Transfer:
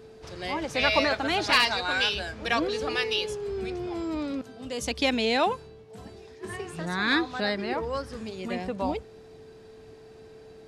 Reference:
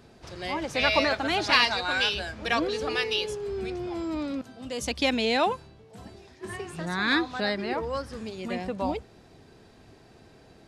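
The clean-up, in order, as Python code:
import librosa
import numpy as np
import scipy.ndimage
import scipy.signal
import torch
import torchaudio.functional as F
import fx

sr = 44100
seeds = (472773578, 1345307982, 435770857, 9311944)

y = fx.fix_declip(x, sr, threshold_db=-10.0)
y = fx.notch(y, sr, hz=440.0, q=30.0)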